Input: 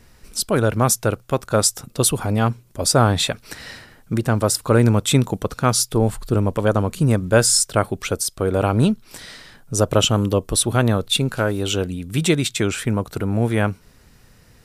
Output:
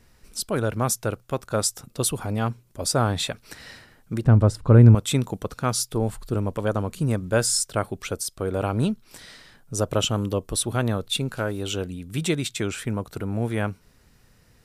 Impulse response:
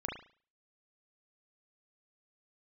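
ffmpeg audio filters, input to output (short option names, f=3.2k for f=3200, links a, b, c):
-filter_complex "[0:a]asettb=1/sr,asplit=3[a][b][c];[a]atrim=end=4.244[d];[b]atrim=start=4.24:end=4.95,asetpts=PTS-STARTPTS,afade=t=in:d=0.004:c=qsin,afade=t=out:st=0.706:d=0.004:c=qsin,aemphasis=mode=reproduction:type=riaa[e];[c]atrim=start=4.946[f];[d][e]acrossfade=d=0.004:c1=hsin:c2=qsin[g];[g][f]acrossfade=d=0.004:c1=qsin:c2=hsin,volume=-6.5dB"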